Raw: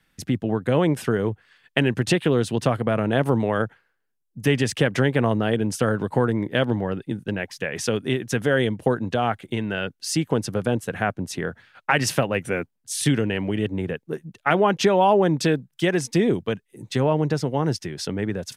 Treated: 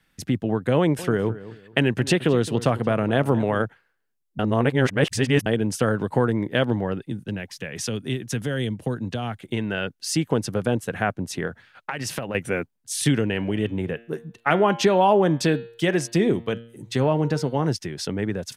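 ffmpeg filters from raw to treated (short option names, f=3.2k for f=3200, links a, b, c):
-filter_complex "[0:a]asettb=1/sr,asplit=3[a][b][c];[a]atrim=end=0.774[d];[b]atrim=start=0.77:end=3.65,asetpts=PTS-STARTPTS,afade=t=in:d=0.004:c=qsin,afade=t=out:st=2.876:d=0.004:c=qsin,asplit=2[e][f];[f]adelay=216,lowpass=f=2.6k:p=1,volume=-15.5dB,asplit=2[g][h];[h]adelay=216,lowpass=f=2.6k:p=1,volume=0.3,asplit=2[i][j];[j]adelay=216,lowpass=f=2.6k:p=1,volume=0.3[k];[e][g][i][k]amix=inputs=4:normalize=0,atrim=end_sample=127008[l];[c]atrim=start=3.646[m];[d][l]acrossfade=d=0.004:c1=hsin:c2=qsin[n];[n][m]acrossfade=d=0.004:c1=qsin:c2=hsin,asettb=1/sr,asplit=3[o][p][q];[o]atrim=end=7.064[r];[p]atrim=start=7.06:end=9.43,asetpts=PTS-STARTPTS,afade=t=in:d=0.004:c=qsin,afade=t=out:st=2.366:d=0.004:c=qsin,acrossover=split=250|3000[s][t][u];[t]acompressor=threshold=-46dB:ratio=1.5:attack=3.2:release=140:knee=2.83:detection=peak[v];[s][v][u]amix=inputs=3:normalize=0[w];[q]atrim=start=9.426[x];[r][w]acrossfade=d=0.004:c1=hsin:c2=qsin[y];[y][x]acrossfade=d=0.004:c1=qsin:c2=hsin,asettb=1/sr,asplit=3[z][aa][ab];[z]atrim=end=11.474[ac];[aa]atrim=start=11.47:end=12.35,asetpts=PTS-STARTPTS,afade=t=in:d=0.004:c=qsin,afade=t=out:st=0.876:d=0.004:c=qsin,acompressor=threshold=-25dB:ratio=6:attack=3.2:release=140:knee=1:detection=peak[ad];[ab]atrim=start=12.346[ae];[ac][ad]acrossfade=d=0.004:c1=hsin:c2=qsin[af];[af][ae]acrossfade=d=0.004:c1=qsin:c2=hsin,asettb=1/sr,asplit=3[ag][ah][ai];[ag]atrim=end=13.344[aj];[ah]atrim=start=13.34:end=17.68,asetpts=PTS-STARTPTS,afade=t=in:d=0.004:c=qsin,afade=t=out:st=4.336:d=0.004:c=qsin,bandreject=f=116.1:t=h:w=4,bandreject=f=232.2:t=h:w=4,bandreject=f=348.3:t=h:w=4,bandreject=f=464.4:t=h:w=4,bandreject=f=580.5:t=h:w=4,bandreject=f=696.6:t=h:w=4,bandreject=f=812.7:t=h:w=4,bandreject=f=928.8:t=h:w=4,bandreject=f=1.0449k:t=h:w=4,bandreject=f=1.161k:t=h:w=4,bandreject=f=1.2771k:t=h:w=4,bandreject=f=1.3932k:t=h:w=4,bandreject=f=1.5093k:t=h:w=4,bandreject=f=1.6254k:t=h:w=4,bandreject=f=1.7415k:t=h:w=4,bandreject=f=1.8576k:t=h:w=4,bandreject=f=1.9737k:t=h:w=4,bandreject=f=2.0898k:t=h:w=4,bandreject=f=2.2059k:t=h:w=4,bandreject=f=2.322k:t=h:w=4,bandreject=f=2.4381k:t=h:w=4,bandreject=f=2.5542k:t=h:w=4,bandreject=f=2.6703k:t=h:w=4,bandreject=f=2.7864k:t=h:w=4,bandreject=f=2.9025k:t=h:w=4,bandreject=f=3.0186k:t=h:w=4,bandreject=f=3.1347k:t=h:w=4,bandreject=f=3.2508k:t=h:w=4,bandreject=f=3.3669k:t=h:w=4,bandreject=f=3.483k:t=h:w=4,bandreject=f=3.5991k:t=h:w=4,bandreject=f=3.7152k:t=h:w=4,bandreject=f=3.8313k:t=h:w=4,bandreject=f=3.9474k:t=h:w=4,bandreject=f=4.0635k:t=h:w=4,bandreject=f=4.1796k:t=h:w=4,bandreject=f=4.2957k:t=h:w=4,bandreject=f=4.4118k:t=h:w=4,bandreject=f=4.5279k:t=h:w=4[ak];[ai]atrim=start=17.676[al];[aj][ak]acrossfade=d=0.004:c1=hsin:c2=qsin[am];[am][al]acrossfade=d=0.004:c1=qsin:c2=hsin,asplit=3[an][ao][ap];[an]atrim=end=4.392[aq];[ao]atrim=start=4.388:end=5.462,asetpts=PTS-STARTPTS,areverse[ar];[ap]atrim=start=5.458[as];[aq][ar]acrossfade=d=0.004:c1=hsin:c2=hsin[at];[at][as]acrossfade=d=0.004:c1=hsin:c2=hsin"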